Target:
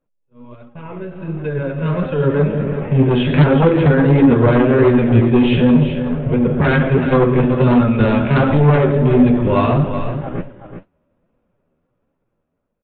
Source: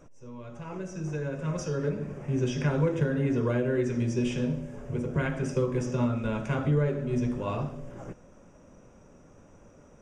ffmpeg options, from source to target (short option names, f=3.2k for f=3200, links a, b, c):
-filter_complex "[0:a]agate=range=-29dB:threshold=-41dB:ratio=16:detection=peak,dynaudnorm=f=430:g=7:m=12.5dB,aresample=8000,aeval=exprs='0.708*sin(PI/2*2.24*val(0)/0.708)':c=same,aresample=44100,flanger=delay=3.6:depth=9.4:regen=47:speed=1.8:shape=sinusoidal,atempo=0.78,asplit=2[a][b];[b]aecho=0:1:377:0.335[c];[a][c]amix=inputs=2:normalize=0,volume=-1dB"